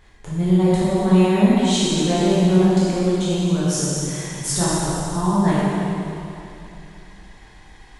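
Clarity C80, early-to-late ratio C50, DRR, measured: −2.5 dB, −5.0 dB, −10.0 dB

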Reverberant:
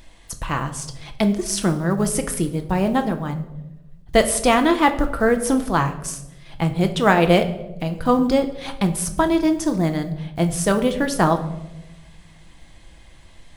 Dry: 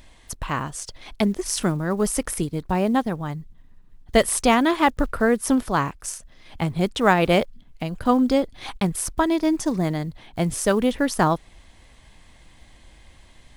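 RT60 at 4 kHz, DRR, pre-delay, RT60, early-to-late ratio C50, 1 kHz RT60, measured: 0.60 s, 6.0 dB, 6 ms, 1.0 s, 12.0 dB, 0.80 s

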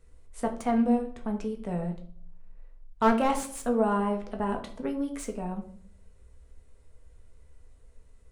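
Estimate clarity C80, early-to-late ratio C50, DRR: 15.0 dB, 11.0 dB, 3.0 dB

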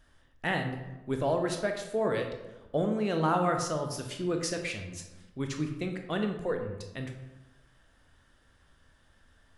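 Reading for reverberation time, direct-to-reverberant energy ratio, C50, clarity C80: 1.0 s, 3.5 dB, 6.5 dB, 8.5 dB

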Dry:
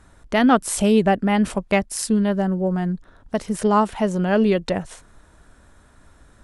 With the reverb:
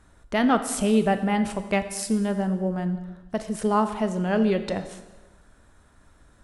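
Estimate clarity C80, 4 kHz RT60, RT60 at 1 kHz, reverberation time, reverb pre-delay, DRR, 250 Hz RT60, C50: 12.5 dB, 1.1 s, 1.2 s, 1.2 s, 5 ms, 9.0 dB, 1.1 s, 11.0 dB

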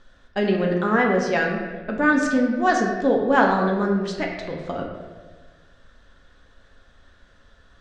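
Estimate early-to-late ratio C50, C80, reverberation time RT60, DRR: 3.5 dB, 5.0 dB, 1.4 s, −0.5 dB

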